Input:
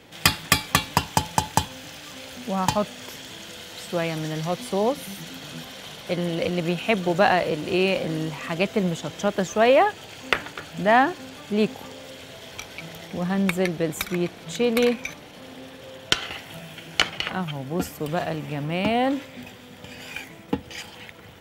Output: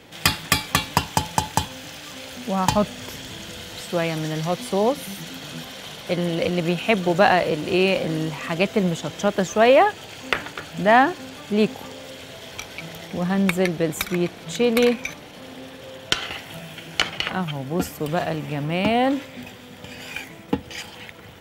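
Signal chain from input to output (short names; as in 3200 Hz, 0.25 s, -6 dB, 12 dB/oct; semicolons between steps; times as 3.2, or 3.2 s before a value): 2.72–3.81 low shelf 140 Hz +11 dB; maximiser +4.5 dB; gain -2 dB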